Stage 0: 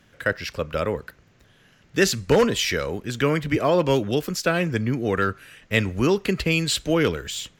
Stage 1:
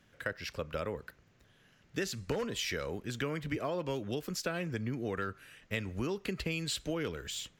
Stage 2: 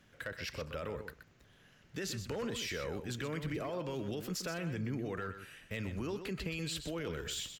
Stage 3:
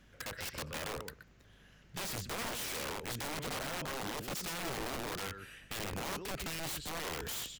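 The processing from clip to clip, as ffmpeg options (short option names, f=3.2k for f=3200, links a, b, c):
-af "acompressor=threshold=-23dB:ratio=5,volume=-8.5dB"
-af "volume=24dB,asoftclip=hard,volume=-24dB,alimiter=level_in=7.5dB:limit=-24dB:level=0:latency=1:release=12,volume=-7.5dB,aecho=1:1:125:0.335,volume=1dB"
-af "aeval=exprs='(mod(53.1*val(0)+1,2)-1)/53.1':c=same,aeval=exprs='val(0)+0.000562*(sin(2*PI*50*n/s)+sin(2*PI*2*50*n/s)/2+sin(2*PI*3*50*n/s)/3+sin(2*PI*4*50*n/s)/4+sin(2*PI*5*50*n/s)/5)':c=same,volume=1dB"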